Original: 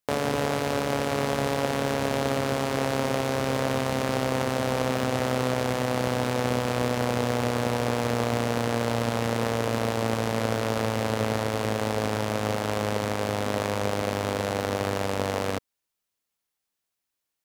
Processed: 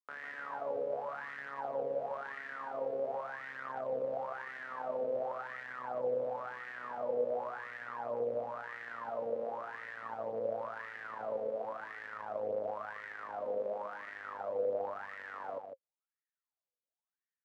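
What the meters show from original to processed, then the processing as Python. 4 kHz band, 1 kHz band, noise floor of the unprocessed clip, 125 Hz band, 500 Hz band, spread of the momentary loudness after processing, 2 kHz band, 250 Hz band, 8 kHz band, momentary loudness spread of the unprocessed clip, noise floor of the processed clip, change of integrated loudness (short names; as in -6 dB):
under -25 dB, -11.5 dB, -83 dBFS, -32.0 dB, -9.5 dB, 8 LU, -11.0 dB, -25.0 dB, under -35 dB, 2 LU, under -85 dBFS, -12.0 dB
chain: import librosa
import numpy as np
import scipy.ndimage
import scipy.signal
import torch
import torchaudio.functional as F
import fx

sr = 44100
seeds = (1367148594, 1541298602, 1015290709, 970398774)

p1 = scipy.signal.sosfilt(scipy.signal.butter(2, 110.0, 'highpass', fs=sr, output='sos'), x)
p2 = fx.low_shelf(p1, sr, hz=210.0, db=11.0)
p3 = fx.wah_lfo(p2, sr, hz=0.94, low_hz=490.0, high_hz=1900.0, q=14.0)
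y = p3 + fx.echo_single(p3, sr, ms=151, db=-6.5, dry=0)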